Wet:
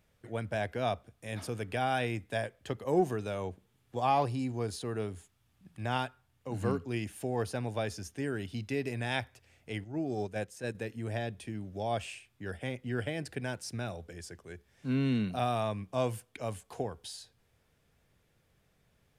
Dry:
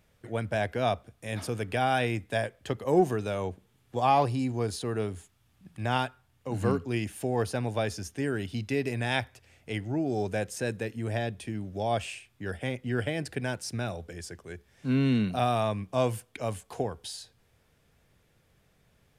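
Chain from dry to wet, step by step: 9.84–10.75 gate -29 dBFS, range -7 dB; gain -4.5 dB

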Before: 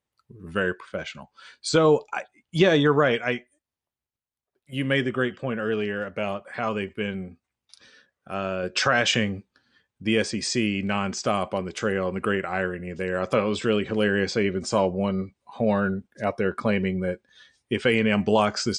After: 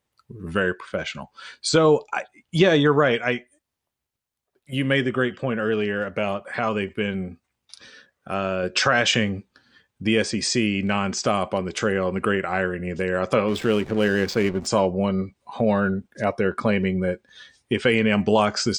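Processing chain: in parallel at +1.5 dB: compressor, threshold -32 dBFS, peak gain reduction 17 dB; 13.48–14.67 on the sum: backlash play -28 dBFS

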